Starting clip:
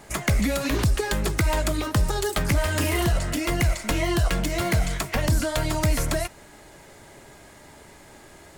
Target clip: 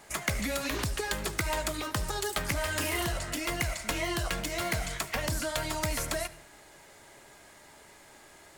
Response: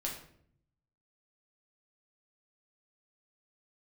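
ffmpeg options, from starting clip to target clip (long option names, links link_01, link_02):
-filter_complex "[0:a]lowshelf=frequency=430:gain=-9.5,asplit=2[link_01][link_02];[1:a]atrim=start_sample=2205,adelay=73[link_03];[link_02][link_03]afir=irnorm=-1:irlink=0,volume=-18.5dB[link_04];[link_01][link_04]amix=inputs=2:normalize=0,volume=-3.5dB"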